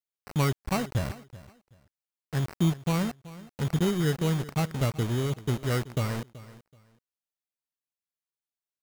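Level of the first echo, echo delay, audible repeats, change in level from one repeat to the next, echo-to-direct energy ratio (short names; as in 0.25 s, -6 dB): -18.0 dB, 0.379 s, 2, -13.0 dB, -18.0 dB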